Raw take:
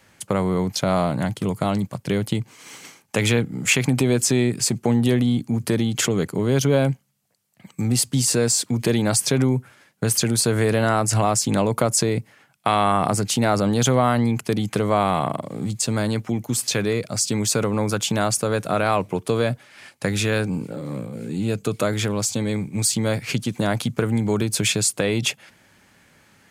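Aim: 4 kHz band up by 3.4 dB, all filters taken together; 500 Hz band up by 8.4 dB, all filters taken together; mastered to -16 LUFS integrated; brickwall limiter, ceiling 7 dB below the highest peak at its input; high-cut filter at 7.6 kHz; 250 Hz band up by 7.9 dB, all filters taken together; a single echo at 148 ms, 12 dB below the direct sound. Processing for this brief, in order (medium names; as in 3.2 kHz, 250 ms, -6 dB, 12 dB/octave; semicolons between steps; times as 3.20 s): low-pass 7.6 kHz; peaking EQ 250 Hz +7.5 dB; peaking EQ 500 Hz +8 dB; peaking EQ 4 kHz +4.5 dB; peak limiter -5.5 dBFS; delay 148 ms -12 dB; trim +1 dB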